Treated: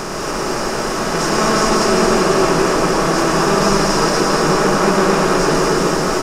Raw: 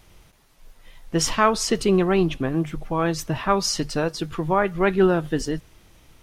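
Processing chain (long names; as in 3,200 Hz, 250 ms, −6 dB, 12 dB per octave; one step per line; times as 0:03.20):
compressor on every frequency bin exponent 0.2
on a send: single-tap delay 226 ms −6 dB
on the sum: dense smooth reverb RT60 4.4 s, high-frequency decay 0.75×, pre-delay 90 ms, DRR −3.5 dB
level −7 dB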